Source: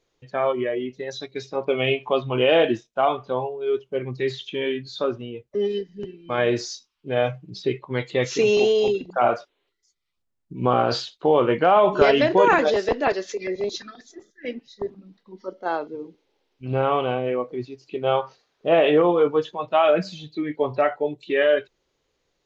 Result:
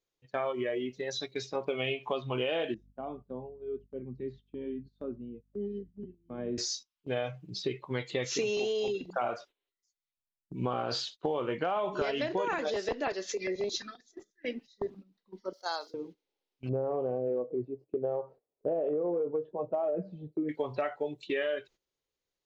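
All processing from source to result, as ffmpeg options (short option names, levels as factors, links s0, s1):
-filter_complex "[0:a]asettb=1/sr,asplit=3[s0][s1][s2];[s0]atrim=end=2.744[s3];[s1]atrim=start=2.74:end=6.58,asetpts=PTS-STARTPTS,afade=t=in:d=0.004:c=qsin,afade=t=out:st=3.836:d=0.004:c=qsin,bandpass=f=220:t=q:w=2.2,aeval=exprs='val(0)+0.002*(sin(2*PI*50*n/s)+sin(2*PI*2*50*n/s)/2+sin(2*PI*3*50*n/s)/3+sin(2*PI*4*50*n/s)/4+sin(2*PI*5*50*n/s)/5)':c=same[s4];[s2]atrim=start=6.576[s5];[s3][s4]acrossfade=d=0.004:c1=hsin:c2=qsin[s6];[s6][s5]acrossfade=d=0.004:c1=qsin:c2=hsin,asettb=1/sr,asplit=3[s7][s8][s9];[s7]atrim=end=15.534[s10];[s8]atrim=start=15.53:end=15.94,asetpts=PTS-STARTPTS,afade=t=in:d=0.004:c=qsin,afade=t=out:st=0.406:d=0.004:c=qsin,highpass=820,highshelf=f=3500:t=q:w=3:g=11[s11];[s9]atrim=start=15.936[s12];[s10][s11]acrossfade=d=0.004:c1=hsin:c2=qsin[s13];[s13][s12]acrossfade=d=0.004:c1=qsin:c2=hsin,asettb=1/sr,asplit=3[s14][s15][s16];[s14]atrim=end=16.694[s17];[s15]atrim=start=16.69:end=20.49,asetpts=PTS-STARTPTS,afade=t=in:d=0.004:c=qsin,afade=t=out:st=3.796:d=0.004:c=qsin,lowpass=f=520:t=q:w=1.9,acompressor=threshold=0.178:ratio=4:attack=3.2:release=140:knee=1:detection=peak[s18];[s16]atrim=start=20.486[s19];[s17][s18]acrossfade=d=0.004:c1=hsin:c2=qsin[s20];[s20][s19]acrossfade=d=0.004:c1=qsin:c2=hsin,agate=range=0.2:threshold=0.00794:ratio=16:detection=peak,highshelf=f=3800:g=7,acompressor=threshold=0.0631:ratio=6,volume=0.596"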